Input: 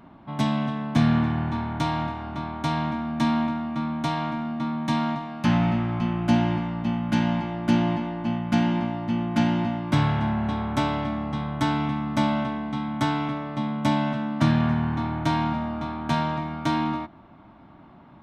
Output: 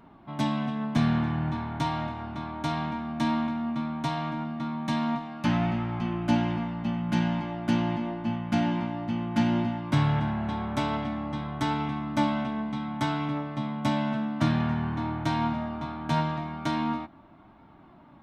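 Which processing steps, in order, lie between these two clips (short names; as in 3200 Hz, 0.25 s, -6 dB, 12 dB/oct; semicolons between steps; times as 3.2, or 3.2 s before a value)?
flange 0.17 Hz, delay 2.1 ms, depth 8.6 ms, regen +67%; gain +1 dB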